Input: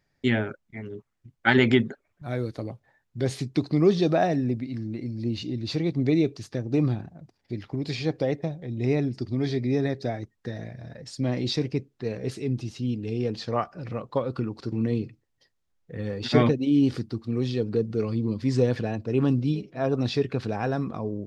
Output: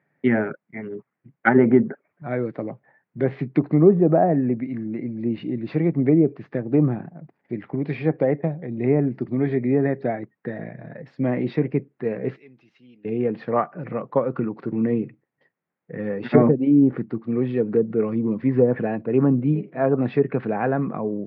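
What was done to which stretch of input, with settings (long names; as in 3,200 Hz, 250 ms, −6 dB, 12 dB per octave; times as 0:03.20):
0:12.36–0:13.05: first-order pre-emphasis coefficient 0.97
whole clip: Chebyshev band-pass filter 150–2,100 Hz, order 3; treble cut that deepens with the level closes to 880 Hz, closed at −18 dBFS; level +6 dB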